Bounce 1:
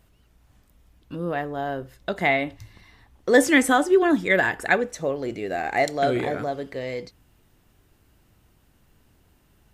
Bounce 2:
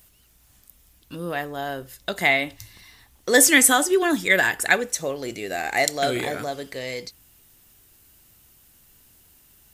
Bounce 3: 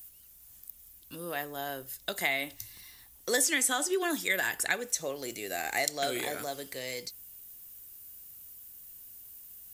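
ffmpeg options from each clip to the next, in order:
-af "crystalizer=i=6:c=0,volume=-3dB"
-filter_complex "[0:a]aemphasis=mode=production:type=50fm,acrossover=split=240|7300[a][b][c];[a]acompressor=threshold=-44dB:ratio=4[d];[b]acompressor=threshold=-18dB:ratio=4[e];[c]acompressor=threshold=-32dB:ratio=4[f];[d][e][f]amix=inputs=3:normalize=0,volume=-7.5dB"

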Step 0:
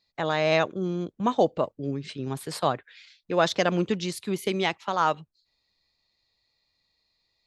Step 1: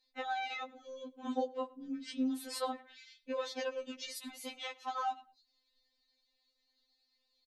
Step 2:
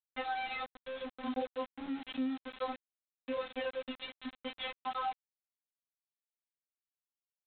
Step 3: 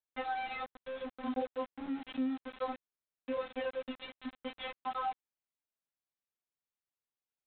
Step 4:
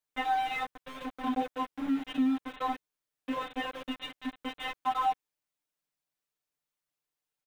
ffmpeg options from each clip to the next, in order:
-filter_complex "[0:a]acompressor=threshold=-30dB:ratio=4,asplit=2[a][b];[b]adelay=106,lowpass=f=3.4k:p=1,volume=-21.5dB,asplit=2[c][d];[d]adelay=106,lowpass=f=3.4k:p=1,volume=0.29[e];[a][c][e]amix=inputs=3:normalize=0,afftfilt=real='re*3.46*eq(mod(b,12),0)':imag='im*3.46*eq(mod(b,12),0)':win_size=2048:overlap=0.75,volume=-1.5dB"
-af "acompressor=threshold=-46dB:ratio=2,aresample=8000,aeval=exprs='val(0)*gte(abs(val(0)),0.00376)':c=same,aresample=44100,volume=7dB"
-af "highshelf=f=3.6k:g=-11.5,volume=1dB"
-filter_complex "[0:a]asplit=2[a][b];[b]aeval=exprs='val(0)*gte(abs(val(0)),0.00891)':c=same,volume=-11dB[c];[a][c]amix=inputs=2:normalize=0,aecho=1:1:6.7:0.94,volume=2dB"

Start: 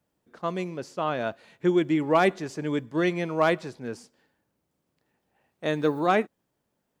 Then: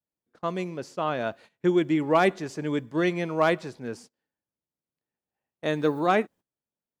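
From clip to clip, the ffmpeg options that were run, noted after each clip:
-af "agate=range=-19dB:threshold=-47dB:ratio=16:detection=peak"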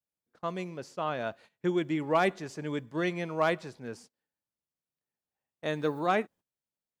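-af "equalizer=f=310:t=o:w=1.1:g=-3,volume=-4dB"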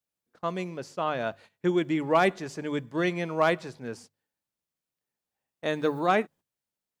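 -af "bandreject=f=50:t=h:w=6,bandreject=f=100:t=h:w=6,bandreject=f=150:t=h:w=6,volume=3.5dB"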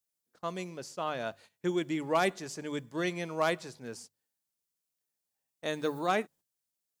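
-af "bass=f=250:g=-1,treble=f=4k:g=10,volume=-5.5dB"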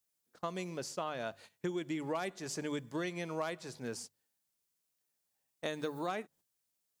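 -af "acompressor=threshold=-37dB:ratio=6,volume=3dB"

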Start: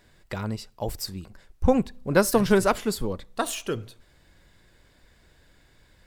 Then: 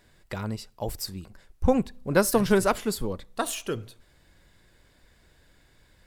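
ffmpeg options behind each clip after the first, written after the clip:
-af "equalizer=f=11k:w=1.3:g=3,volume=-1.5dB"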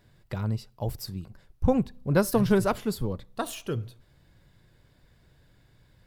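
-af "equalizer=f=125:t=o:w=1:g=10,equalizer=f=2k:t=o:w=1:g=-3,equalizer=f=8k:t=o:w=1:g=-6,volume=-2.5dB"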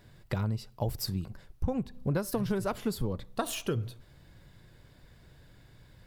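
-af "acompressor=threshold=-30dB:ratio=16,volume=4dB"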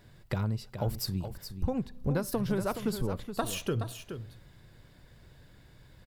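-af "aecho=1:1:422:0.335"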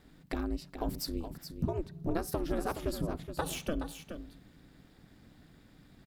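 -af "aeval=exprs='val(0)*sin(2*PI*160*n/s)':c=same"

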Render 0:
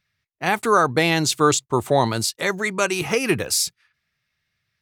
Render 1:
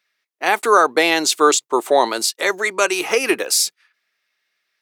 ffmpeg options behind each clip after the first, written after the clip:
-af "highpass=f=320:w=0.5412,highpass=f=320:w=1.3066,volume=4dB"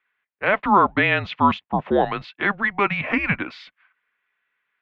-af "highpass=f=180:t=q:w=0.5412,highpass=f=180:t=q:w=1.307,lowpass=f=3k:t=q:w=0.5176,lowpass=f=3k:t=q:w=0.7071,lowpass=f=3k:t=q:w=1.932,afreqshift=-200,lowshelf=f=480:g=-7.5"

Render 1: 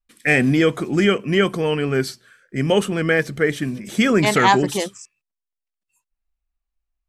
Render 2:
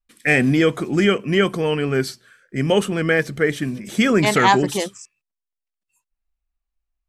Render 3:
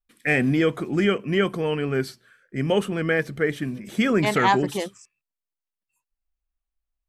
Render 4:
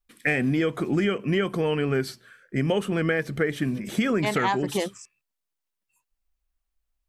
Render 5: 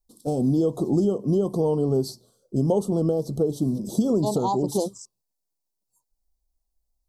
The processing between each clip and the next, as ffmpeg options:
-af anull
-af "equalizer=f=6.8k:w=0.73:g=-6,volume=-4dB"
-af "acompressor=threshold=-25dB:ratio=6,volume=4.5dB"
-af "asuperstop=centerf=2000:order=8:qfactor=0.61,volume=2.5dB"

